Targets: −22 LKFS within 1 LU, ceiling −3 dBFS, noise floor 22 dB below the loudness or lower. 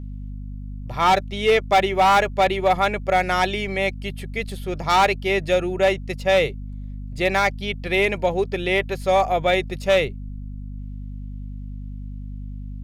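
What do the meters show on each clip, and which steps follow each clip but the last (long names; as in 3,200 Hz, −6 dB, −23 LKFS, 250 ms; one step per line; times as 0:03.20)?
share of clipped samples 1.0%; peaks flattened at −11.0 dBFS; mains hum 50 Hz; hum harmonics up to 250 Hz; level of the hum −30 dBFS; integrated loudness −20.5 LKFS; sample peak −11.0 dBFS; target loudness −22.0 LKFS
→ clipped peaks rebuilt −11 dBFS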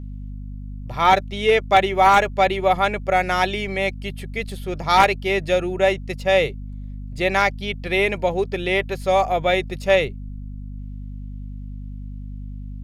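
share of clipped samples 0.0%; mains hum 50 Hz; hum harmonics up to 250 Hz; level of the hum −30 dBFS
→ mains-hum notches 50/100/150/200/250 Hz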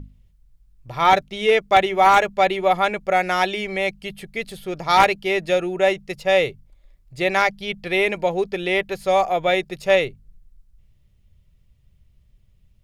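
mains hum none found; integrated loudness −20.0 LKFS; sample peak −1.5 dBFS; target loudness −22.0 LKFS
→ level −2 dB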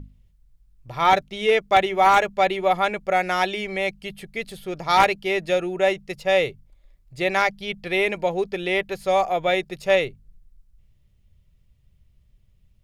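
integrated loudness −22.0 LKFS; sample peak −3.5 dBFS; background noise floor −61 dBFS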